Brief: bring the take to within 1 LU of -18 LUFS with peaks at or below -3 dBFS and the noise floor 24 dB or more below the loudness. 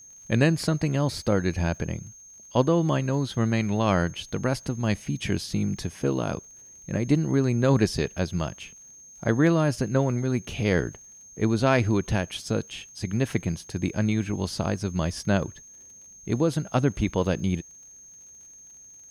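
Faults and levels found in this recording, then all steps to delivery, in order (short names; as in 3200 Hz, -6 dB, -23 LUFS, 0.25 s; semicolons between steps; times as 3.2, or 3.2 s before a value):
ticks 35/s; steady tone 6400 Hz; tone level -46 dBFS; loudness -26.0 LUFS; peak -6.5 dBFS; loudness target -18.0 LUFS
-> de-click; notch 6400 Hz, Q 30; gain +8 dB; limiter -3 dBFS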